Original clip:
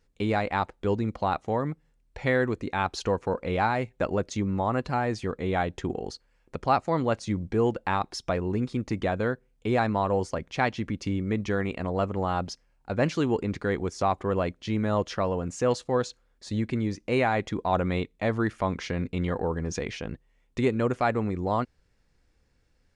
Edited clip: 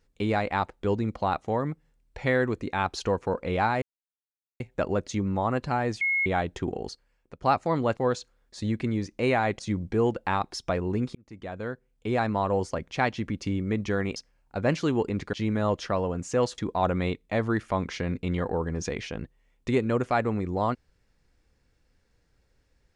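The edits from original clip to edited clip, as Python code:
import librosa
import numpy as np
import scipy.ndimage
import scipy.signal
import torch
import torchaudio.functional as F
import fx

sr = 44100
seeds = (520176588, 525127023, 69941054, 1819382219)

y = fx.edit(x, sr, fx.insert_silence(at_s=3.82, length_s=0.78),
    fx.bleep(start_s=5.23, length_s=0.25, hz=2170.0, db=-22.0),
    fx.fade_out_to(start_s=6.14, length_s=0.5, floor_db=-16.5),
    fx.fade_in_span(start_s=8.75, length_s=1.64, curve='qsin'),
    fx.cut(start_s=11.76, length_s=0.74),
    fx.cut(start_s=13.67, length_s=0.94),
    fx.move(start_s=15.86, length_s=1.62, to_s=7.19), tone=tone)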